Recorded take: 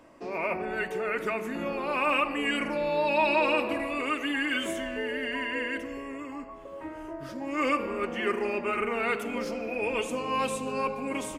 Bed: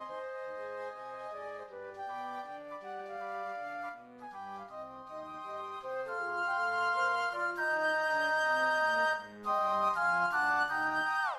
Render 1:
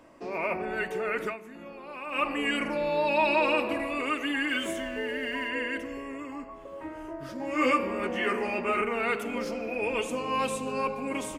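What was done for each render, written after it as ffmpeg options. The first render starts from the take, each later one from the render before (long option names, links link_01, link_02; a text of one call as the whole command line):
ffmpeg -i in.wav -filter_complex "[0:a]asettb=1/sr,asplit=3[link_01][link_02][link_03];[link_01]atrim=end=4.484[link_04];[link_02]atrim=start=4.48:end=5.49,asetpts=PTS-STARTPTS,afade=type=in:duration=0.004:curve=qsin,afade=type=out:start_time=1.006:duration=0.004:curve=qsin,aeval=exprs='sgn(val(0))*max(abs(val(0))-0.00133,0)':channel_layout=same[link_05];[link_03]atrim=start=5.486[link_06];[link_04][link_05]acrossfade=duration=0.004:curve1=hsin:curve2=qsin[link_07];[link_07][link_06]acrossfade=duration=0.004:curve1=qsin:curve2=hsin,asettb=1/sr,asplit=3[link_08][link_09][link_10];[link_08]atrim=end=7.384[link_11];[link_09]atrim=start=7.38:end=8.82,asetpts=PTS-STARTPTS,afade=type=in:duration=0.004:curve=qsin,afade=type=out:start_time=1.436:duration=0.004:curve=qsin,asplit=2[link_12][link_13];[link_13]adelay=16,volume=-2dB[link_14];[link_12][link_14]amix=inputs=2:normalize=0,atrim=end_sample=63504[link_15];[link_10]atrim=start=8.816[link_16];[link_11][link_15]acrossfade=duration=0.004:curve1=hsin:curve2=qsin[link_17];[link_17][link_16]acrossfade=duration=0.004:curve1=qsin:curve2=hsin,asplit=3[link_18][link_19][link_20];[link_18]atrim=end=1.37,asetpts=PTS-STARTPTS,afade=type=out:start_time=1.25:duration=0.12:silence=0.251189[link_21];[link_19]atrim=start=1.37:end=2.11,asetpts=PTS-STARTPTS,volume=-12dB[link_22];[link_20]atrim=start=2.11,asetpts=PTS-STARTPTS,afade=type=in:duration=0.12:silence=0.251189[link_23];[link_21][link_22][link_23]concat=n=3:v=0:a=1" out.wav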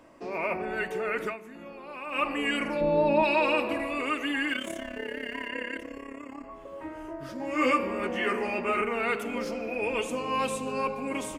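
ffmpeg -i in.wav -filter_complex "[0:a]asplit=3[link_01][link_02][link_03];[link_01]afade=type=out:start_time=2.8:duration=0.02[link_04];[link_02]tiltshelf=frequency=900:gain=9.5,afade=type=in:start_time=2.8:duration=0.02,afade=type=out:start_time=3.22:duration=0.02[link_05];[link_03]afade=type=in:start_time=3.22:duration=0.02[link_06];[link_04][link_05][link_06]amix=inputs=3:normalize=0,asettb=1/sr,asplit=3[link_07][link_08][link_09];[link_07]atrim=end=4.534[link_10];[link_08]atrim=start=4.53:end=6.44,asetpts=PTS-STARTPTS,afade=type=in:duration=0.004:curve=qsin,afade=type=out:start_time=1.906:duration=0.004:curve=qsin,tremolo=f=34:d=0.788[link_11];[link_09]atrim=start=6.436[link_12];[link_10][link_11]acrossfade=duration=0.004:curve1=hsin:curve2=qsin[link_13];[link_13][link_12]acrossfade=duration=0.004:curve1=qsin:curve2=hsin" out.wav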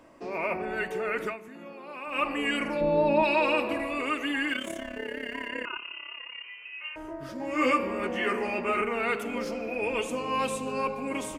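ffmpeg -i in.wav -filter_complex "[0:a]asettb=1/sr,asplit=3[link_01][link_02][link_03];[link_01]atrim=end=1.484[link_04];[link_02]atrim=start=1.48:end=2.08,asetpts=PTS-STARTPTS,afade=type=in:duration=0.004:curve=qsin,afade=type=out:start_time=0.596:duration=0.004:curve=qsin,highpass=frequency=130:width=0.5412,highpass=frequency=130:width=1.3066[link_05];[link_03]atrim=start=2.076[link_06];[link_04][link_05]acrossfade=duration=0.004:curve1=hsin:curve2=qsin[link_07];[link_07][link_06]acrossfade=duration=0.004:curve1=qsin:curve2=hsin,asettb=1/sr,asplit=3[link_08][link_09][link_10];[link_08]atrim=end=5.654[link_11];[link_09]atrim=start=5.65:end=6.96,asetpts=PTS-STARTPTS,afade=type=in:duration=0.004:curve=qsin,afade=type=out:start_time=1.306:duration=0.004:curve=qsin,lowpass=frequency=2600:width_type=q:width=0.5098,lowpass=frequency=2600:width_type=q:width=0.6013,lowpass=frequency=2600:width_type=q:width=0.9,lowpass=frequency=2600:width_type=q:width=2.563,afreqshift=-3100[link_12];[link_10]atrim=start=6.956[link_13];[link_11][link_12]acrossfade=duration=0.004:curve1=hsin:curve2=qsin[link_14];[link_14][link_13]acrossfade=duration=0.004:curve1=qsin:curve2=hsin" out.wav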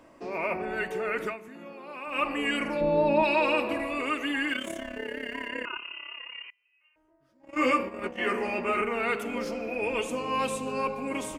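ffmpeg -i in.wav -filter_complex "[0:a]asettb=1/sr,asplit=3[link_01][link_02][link_03];[link_01]atrim=end=6.504[link_04];[link_02]atrim=start=6.5:end=8.22,asetpts=PTS-STARTPTS,afade=type=in:duration=0.004:curve=qsin,afade=type=out:start_time=1.716:duration=0.004:curve=qsin,agate=range=-28dB:threshold=-31dB:ratio=16:release=100:detection=peak[link_05];[link_03]atrim=start=8.216[link_06];[link_04][link_05]acrossfade=duration=0.004:curve1=hsin:curve2=qsin[link_07];[link_07][link_06]acrossfade=duration=0.004:curve1=qsin:curve2=hsin" out.wav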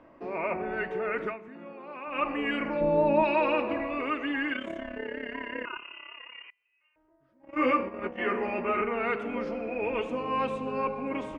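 ffmpeg -i in.wav -af "lowpass=2200" out.wav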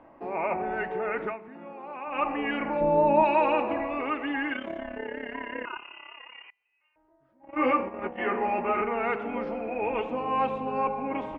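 ffmpeg -i in.wav -af "lowpass=3300,equalizer=frequency=810:width=4.4:gain=10.5" out.wav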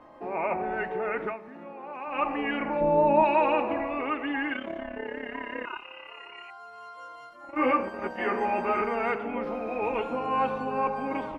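ffmpeg -i in.wav -i bed.wav -filter_complex "[1:a]volume=-13.5dB[link_01];[0:a][link_01]amix=inputs=2:normalize=0" out.wav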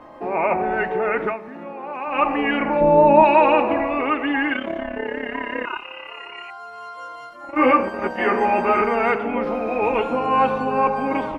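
ffmpeg -i in.wav -af "volume=8.5dB" out.wav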